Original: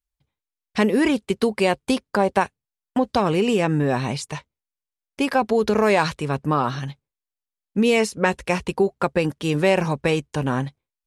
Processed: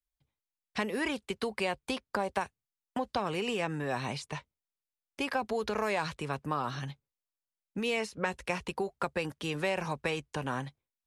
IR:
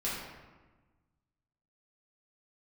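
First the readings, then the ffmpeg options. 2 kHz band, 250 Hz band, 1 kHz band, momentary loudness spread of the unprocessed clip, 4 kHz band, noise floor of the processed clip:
-9.0 dB, -15.0 dB, -10.5 dB, 9 LU, -8.5 dB, under -85 dBFS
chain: -filter_complex "[0:a]acrossover=split=95|610|4400[a][b][c][d];[a]acompressor=threshold=-47dB:ratio=4[e];[b]acompressor=threshold=-31dB:ratio=4[f];[c]acompressor=threshold=-24dB:ratio=4[g];[d]acompressor=threshold=-43dB:ratio=4[h];[e][f][g][h]amix=inputs=4:normalize=0,volume=-6dB"

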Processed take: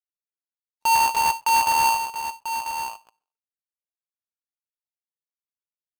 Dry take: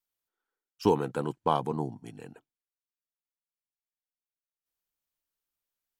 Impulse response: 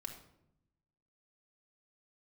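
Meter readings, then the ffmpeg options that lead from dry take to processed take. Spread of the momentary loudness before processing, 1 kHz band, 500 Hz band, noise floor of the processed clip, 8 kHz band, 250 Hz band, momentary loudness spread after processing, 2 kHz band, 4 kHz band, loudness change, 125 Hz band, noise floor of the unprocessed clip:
19 LU, +14.0 dB, -11.5 dB, under -85 dBFS, +27.5 dB, -15.5 dB, 12 LU, +22.0 dB, +17.5 dB, +8.5 dB, under -10 dB, under -85 dBFS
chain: -filter_complex "[0:a]aeval=exprs='0.299*(cos(1*acos(clip(val(0)/0.299,-1,1)))-cos(1*PI/2))+0.0376*(cos(3*acos(clip(val(0)/0.299,-1,1)))-cos(3*PI/2))+0.0944*(cos(4*acos(clip(val(0)/0.299,-1,1)))-cos(4*PI/2))+0.0299*(cos(6*acos(clip(val(0)/0.299,-1,1)))-cos(6*PI/2))+0.133*(cos(8*acos(clip(val(0)/0.299,-1,1)))-cos(8*PI/2))':c=same,lowshelf=f=140:g=8,bandreject=f=820:w=13,agate=range=-46dB:threshold=-33dB:ratio=16:detection=peak,asoftclip=type=tanh:threshold=-24.5dB,asplit=2[a][b];[b]adelay=991.3,volume=-9dB,highshelf=f=4k:g=-22.3[c];[a][c]amix=inputs=2:normalize=0,asplit=2[d][e];[1:a]atrim=start_sample=2205,atrim=end_sample=6174[f];[e][f]afir=irnorm=-1:irlink=0,volume=-14dB[g];[d][g]amix=inputs=2:normalize=0,aeval=exprs='val(0)*sgn(sin(2*PI*910*n/s))':c=same,volume=4.5dB"

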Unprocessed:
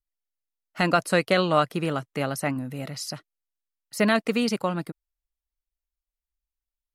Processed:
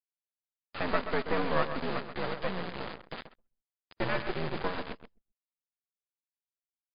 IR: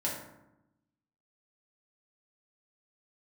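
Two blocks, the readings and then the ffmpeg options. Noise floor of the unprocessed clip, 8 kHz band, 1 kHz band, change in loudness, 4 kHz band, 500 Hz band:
under -85 dBFS, under -40 dB, -7.0 dB, -8.5 dB, -9.5 dB, -8.0 dB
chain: -af "aeval=exprs='val(0)+0.5*0.0531*sgn(val(0))':c=same,aeval=exprs='val(0)+0.00631*(sin(2*PI*60*n/s)+sin(2*PI*2*60*n/s)/2+sin(2*PI*3*60*n/s)/3+sin(2*PI*4*60*n/s)/4+sin(2*PI*5*60*n/s)/5)':c=same,aresample=8000,acrusher=bits=2:mode=log:mix=0:aa=0.000001,aresample=44100,highpass=f=280:t=q:w=0.5412,highpass=f=280:t=q:w=1.307,lowpass=f=2k:t=q:w=0.5176,lowpass=f=2k:t=q:w=0.7071,lowpass=f=2k:t=q:w=1.932,afreqshift=-82,flanger=delay=1.7:depth=8.2:regen=74:speed=0.83:shape=sinusoidal,acrusher=bits=3:dc=4:mix=0:aa=0.000001,aecho=1:1:131|262|393:0.316|0.098|0.0304,anlmdn=0.0158" -ar 11025 -c:a libmp3lame -b:a 48k

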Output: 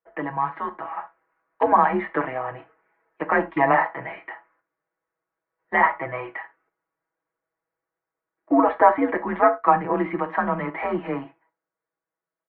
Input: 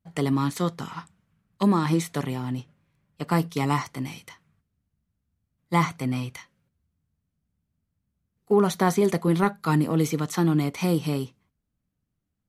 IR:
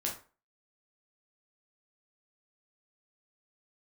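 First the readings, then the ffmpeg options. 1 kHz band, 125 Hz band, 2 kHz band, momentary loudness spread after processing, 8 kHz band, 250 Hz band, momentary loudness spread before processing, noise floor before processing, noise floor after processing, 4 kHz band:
+9.0 dB, -12.5 dB, +9.0 dB, 16 LU, under -40 dB, -3.0 dB, 13 LU, -80 dBFS, under -85 dBFS, under -10 dB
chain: -filter_complex "[0:a]highpass=f=530:t=q:w=0.5412,highpass=f=530:t=q:w=1.307,lowpass=f=2.1k:t=q:w=0.5176,lowpass=f=2.1k:t=q:w=0.7071,lowpass=f=2.1k:t=q:w=1.932,afreqshift=-130,aecho=1:1:6.2:0.96,asplit=2[a][b];[1:a]atrim=start_sample=2205,atrim=end_sample=4410[c];[b][c]afir=irnorm=-1:irlink=0,volume=-8.5dB[d];[a][d]amix=inputs=2:normalize=0,dynaudnorm=f=150:g=17:m=8dB"

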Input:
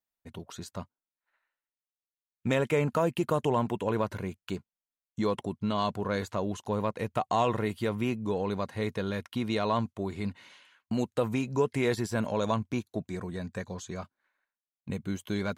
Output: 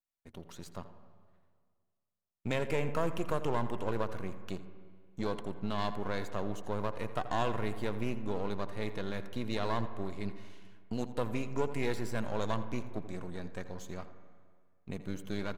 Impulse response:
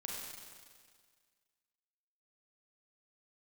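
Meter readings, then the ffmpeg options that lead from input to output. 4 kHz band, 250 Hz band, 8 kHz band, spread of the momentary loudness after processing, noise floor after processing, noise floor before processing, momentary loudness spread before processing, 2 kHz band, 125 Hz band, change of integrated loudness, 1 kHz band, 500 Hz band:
-5.0 dB, -6.5 dB, -6.5 dB, 14 LU, -80 dBFS, under -85 dBFS, 14 LU, -4.0 dB, -5.5 dB, -6.0 dB, -5.5 dB, -6.0 dB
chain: -filter_complex "[0:a]aeval=exprs='if(lt(val(0),0),0.251*val(0),val(0))':c=same,aecho=1:1:85:0.141,asplit=2[a][b];[1:a]atrim=start_sample=2205,lowpass=2.1k,adelay=78[c];[b][c]afir=irnorm=-1:irlink=0,volume=-10dB[d];[a][d]amix=inputs=2:normalize=0,volume=-3.5dB"

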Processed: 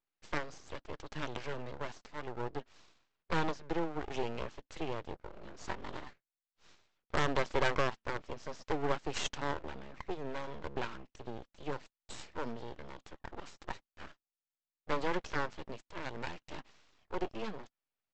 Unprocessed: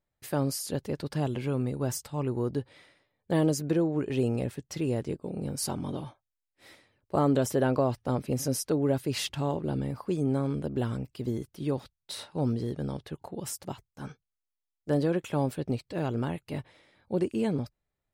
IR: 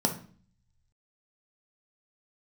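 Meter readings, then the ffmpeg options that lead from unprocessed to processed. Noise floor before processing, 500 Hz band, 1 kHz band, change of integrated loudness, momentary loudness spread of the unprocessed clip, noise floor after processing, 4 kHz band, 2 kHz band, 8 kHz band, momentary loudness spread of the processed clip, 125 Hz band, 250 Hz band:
under -85 dBFS, -8.5 dB, -1.5 dB, -9.0 dB, 12 LU, under -85 dBFS, -4.0 dB, +3.5 dB, -13.0 dB, 14 LU, -15.0 dB, -14.0 dB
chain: -af "highpass=170,equalizer=f=270:t=q:w=4:g=-6,equalizer=f=950:t=q:w=4:g=8,equalizer=f=1.5k:t=q:w=4:g=7,equalizer=f=3k:t=q:w=4:g=5,lowpass=f=4.7k:w=0.5412,lowpass=f=4.7k:w=1.3066,aeval=exprs='0.266*(cos(1*acos(clip(val(0)/0.266,-1,1)))-cos(1*PI/2))+0.0473*(cos(8*acos(clip(val(0)/0.266,-1,1)))-cos(8*PI/2))':c=same,aresample=16000,aeval=exprs='abs(val(0))':c=same,aresample=44100,tremolo=f=0.66:d=0.36,volume=-4.5dB"

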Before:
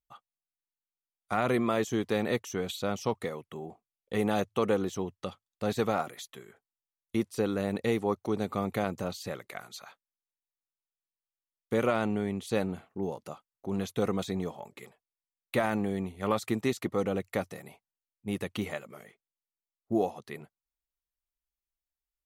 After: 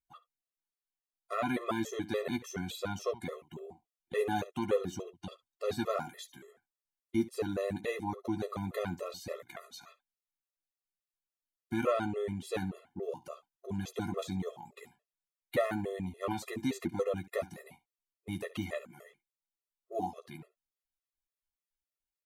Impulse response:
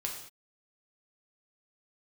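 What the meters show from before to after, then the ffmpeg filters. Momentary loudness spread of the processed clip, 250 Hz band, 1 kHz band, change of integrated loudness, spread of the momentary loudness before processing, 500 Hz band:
16 LU, -5.0 dB, -4.5 dB, -4.5 dB, 15 LU, -4.5 dB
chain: -af "aecho=1:1:12|70:0.501|0.133,afftfilt=real='re*gt(sin(2*PI*3.5*pts/sr)*(1-2*mod(floor(b*sr/1024/350),2)),0)':imag='im*gt(sin(2*PI*3.5*pts/sr)*(1-2*mod(floor(b*sr/1024/350),2)),0)':win_size=1024:overlap=0.75,volume=-2dB"

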